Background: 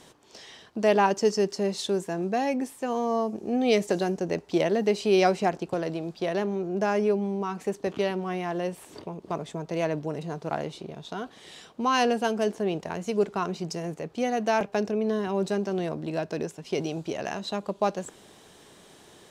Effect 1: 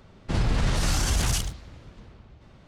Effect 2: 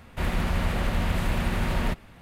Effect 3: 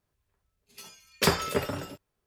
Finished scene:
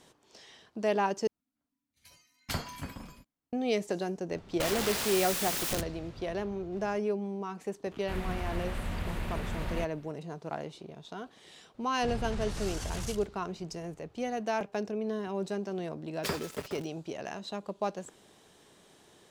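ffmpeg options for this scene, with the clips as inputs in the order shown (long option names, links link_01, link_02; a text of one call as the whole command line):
ffmpeg -i bed.wav -i cue0.wav -i cue1.wav -i cue2.wav -filter_complex "[3:a]asplit=2[link_01][link_02];[1:a]asplit=2[link_03][link_04];[0:a]volume=-7dB[link_05];[link_01]afreqshift=-320[link_06];[link_03]aeval=exprs='(mod(23.7*val(0)+1,2)-1)/23.7':channel_layout=same[link_07];[link_02]aeval=exprs='val(0)*gte(abs(val(0)),0.0335)':channel_layout=same[link_08];[link_05]asplit=2[link_09][link_10];[link_09]atrim=end=1.274[link_11];[link_06]atrim=end=2.26,asetpts=PTS-STARTPTS,volume=-11dB[link_12];[link_10]atrim=start=3.526[link_13];[link_07]atrim=end=2.67,asetpts=PTS-STARTPTS,volume=-1dB,afade=type=in:duration=0.004:curve=hsin,afade=type=out:start_time=2.666:duration=0.004:curve=hsin,adelay=4310[link_14];[2:a]atrim=end=2.21,asetpts=PTS-STARTPTS,volume=-9.5dB,afade=type=in:duration=0.004:curve=hsin,afade=type=out:start_time=2.206:duration=0.004:curve=hsin,adelay=7910[link_15];[link_04]atrim=end=2.67,asetpts=PTS-STARTPTS,volume=-13dB,afade=type=in:duration=0.004:curve=hsin,afade=type=out:start_time=2.666:duration=0.004:curve=hsin,adelay=11740[link_16];[link_08]atrim=end=2.26,asetpts=PTS-STARTPTS,volume=-10.5dB,afade=type=in:duration=0.004:curve=hsin,afade=type=out:start_time=2.256:duration=0.004:curve=hsin,adelay=15020[link_17];[link_11][link_12]acrossfade=duration=0.004:curve1=hsin:curve2=hsin[link_18];[link_18][link_13]acrossfade=duration=0.004:curve1=hsin:curve2=hsin[link_19];[link_19][link_14][link_15][link_16][link_17]amix=inputs=5:normalize=0" out.wav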